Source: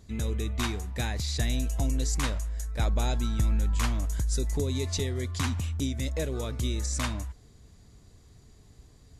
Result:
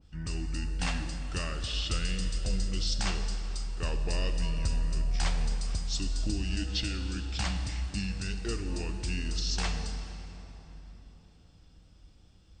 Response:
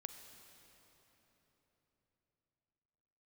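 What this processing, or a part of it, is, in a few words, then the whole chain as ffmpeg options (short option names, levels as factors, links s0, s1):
slowed and reverbed: -filter_complex "[0:a]asetrate=32193,aresample=44100[s0];[1:a]atrim=start_sample=2205[s1];[s0][s1]afir=irnorm=-1:irlink=0,adynamicequalizer=threshold=0.00251:dfrequency=2000:dqfactor=0.7:tfrequency=2000:tqfactor=0.7:attack=5:release=100:ratio=0.375:range=2.5:mode=boostabove:tftype=highshelf"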